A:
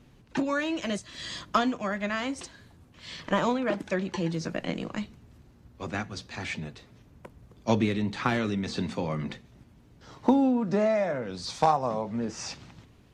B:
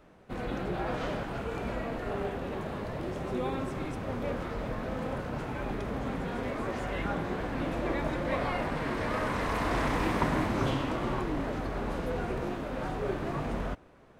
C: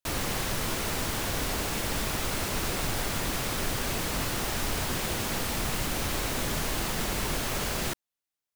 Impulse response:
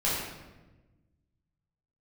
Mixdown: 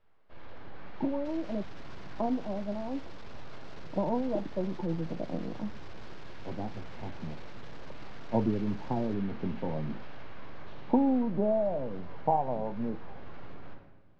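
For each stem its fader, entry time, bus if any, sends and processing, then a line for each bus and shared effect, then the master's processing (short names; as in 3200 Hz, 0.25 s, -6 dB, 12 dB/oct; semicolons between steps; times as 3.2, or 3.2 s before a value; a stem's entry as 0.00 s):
-3.0 dB, 0.65 s, no bus, no send, Chebyshev low-pass 930 Hz, order 6
-17.0 dB, 0.00 s, bus A, send -9.5 dB, limiter -25 dBFS, peak gain reduction 10 dB; full-wave rectifier
-15.0 dB, 1.20 s, bus A, no send, tube stage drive 27 dB, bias 0.8
bus A: 0.0 dB, limiter -42 dBFS, peak gain reduction 4 dB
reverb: on, RT60 1.2 s, pre-delay 9 ms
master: LPF 5000 Hz 24 dB/oct; bell 1500 Hz +2 dB 0.25 oct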